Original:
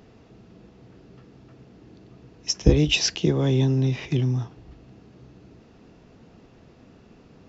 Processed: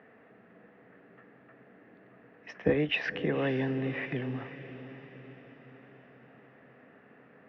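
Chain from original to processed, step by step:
loudspeaker in its box 320–2,200 Hz, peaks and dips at 350 Hz −10 dB, 930 Hz −5 dB, 1,800 Hz +10 dB
feedback delay with all-pass diffusion 528 ms, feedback 52%, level −12.5 dB

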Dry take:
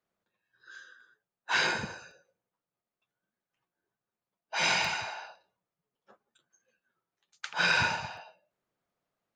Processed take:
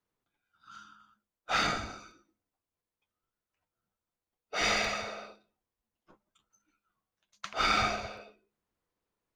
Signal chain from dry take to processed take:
gain on one half-wave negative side −3 dB
frequency shifter −210 Hz

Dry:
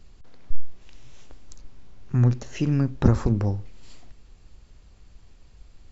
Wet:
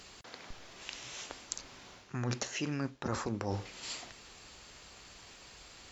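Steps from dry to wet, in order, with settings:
high-pass filter 1,100 Hz 6 dB per octave
reversed playback
downward compressor 20 to 1, threshold −45 dBFS, peak gain reduction 20.5 dB
reversed playback
level +14 dB
Ogg Vorbis 128 kbit/s 44,100 Hz

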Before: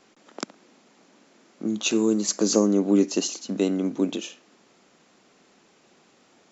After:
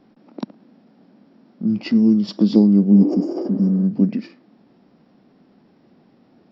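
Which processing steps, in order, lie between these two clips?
tilt shelving filter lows +9 dB, about 1,200 Hz
healed spectral selection 0:02.97–0:03.80, 340–6,200 Hz both
formants moved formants −5 semitones

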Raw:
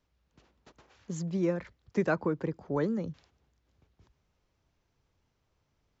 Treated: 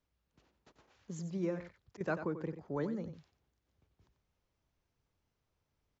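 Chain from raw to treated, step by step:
0:01.40–0:02.01: volume swells 197 ms
on a send: single-tap delay 91 ms −10.5 dB
on the sum: level −7 dB

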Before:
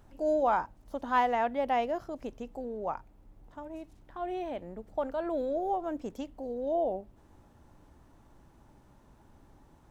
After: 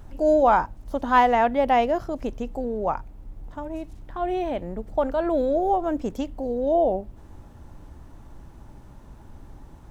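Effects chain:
low-shelf EQ 120 Hz +9 dB
level +8.5 dB

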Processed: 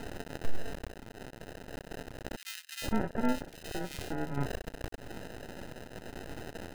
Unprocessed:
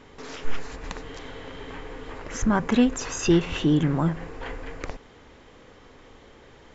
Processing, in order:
gate pattern "xxxx....xx" 69 BPM −12 dB
bit-depth reduction 8 bits, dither triangular
parametric band 4,600 Hz −15 dB 0.76 octaves
downward compressor 2.5 to 1, threshold −40 dBFS, peak gain reduction 16.5 dB
flanger 0.31 Hz, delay 10 ms, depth 9.1 ms, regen +53%
decimation without filtering 39×
half-wave rectification
parametric band 1,700 Hz +3 dB 2 octaves
0:02.36–0:04.46: multiband delay without the direct sound highs, lows 460 ms, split 2,000 Hz
level +12 dB

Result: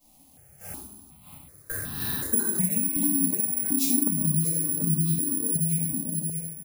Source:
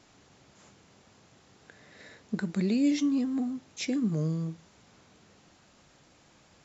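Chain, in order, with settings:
high-shelf EQ 3,400 Hz +7 dB
noise gate −53 dBFS, range −22 dB
rectangular room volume 250 cubic metres, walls mixed, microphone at 5.5 metres
speech leveller 0.5 s
0:02.88–0:03.70: phaser with its sweep stopped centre 950 Hz, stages 8
repeating echo 625 ms, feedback 36%, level −8 dB
bad sample-rate conversion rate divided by 4×, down filtered, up zero stuff
downward compressor 20 to 1, threshold −17 dBFS, peak gain reduction 20.5 dB
low-shelf EQ 240 Hz +10.5 dB
step-sequenced phaser 2.7 Hz 410–2,100 Hz
level −1.5 dB

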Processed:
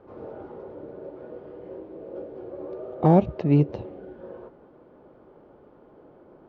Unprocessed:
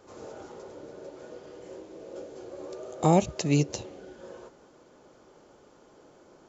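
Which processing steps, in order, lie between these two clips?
Bessel low-pass filter 2,400 Hz, order 6
tilt shelving filter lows +6.5 dB, about 1,500 Hz
in parallel at −7.5 dB: asymmetric clip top −10.5 dBFS
on the sum: level −4 dB

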